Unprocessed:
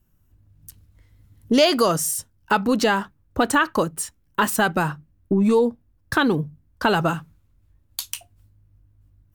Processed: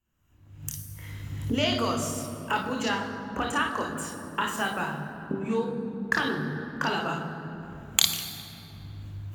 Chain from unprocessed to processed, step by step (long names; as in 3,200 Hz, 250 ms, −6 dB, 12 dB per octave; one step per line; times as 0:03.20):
camcorder AGC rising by 43 dB per second
low-shelf EQ 470 Hz −9 dB
convolution reverb RT60 3.6 s, pre-delay 25 ms, DRR 1 dB
level −15 dB